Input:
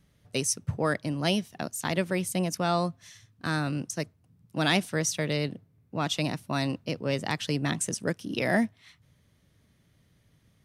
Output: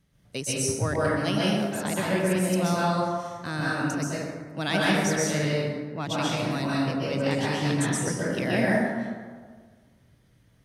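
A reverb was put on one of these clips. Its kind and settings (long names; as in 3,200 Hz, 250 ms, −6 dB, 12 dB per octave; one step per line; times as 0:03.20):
dense smooth reverb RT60 1.6 s, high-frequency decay 0.45×, pre-delay 115 ms, DRR −6.5 dB
level −4 dB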